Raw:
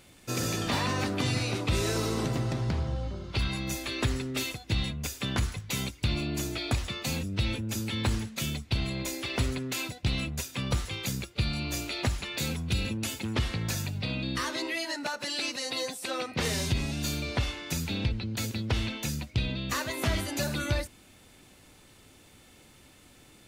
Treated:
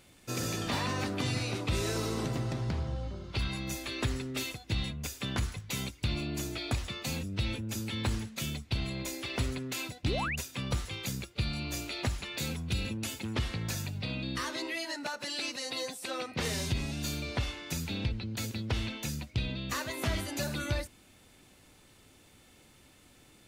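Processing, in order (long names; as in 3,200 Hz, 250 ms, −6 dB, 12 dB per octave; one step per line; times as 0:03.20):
sound drawn into the spectrogram rise, 0:10.04–0:10.36, 220–3,000 Hz −31 dBFS
level −3.5 dB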